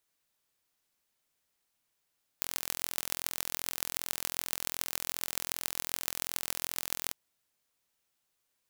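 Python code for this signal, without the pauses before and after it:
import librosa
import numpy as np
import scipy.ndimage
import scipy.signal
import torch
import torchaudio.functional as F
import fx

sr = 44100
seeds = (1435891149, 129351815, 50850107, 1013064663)

y = fx.impulse_train(sr, length_s=4.71, per_s=42.6, accent_every=6, level_db=-2.5)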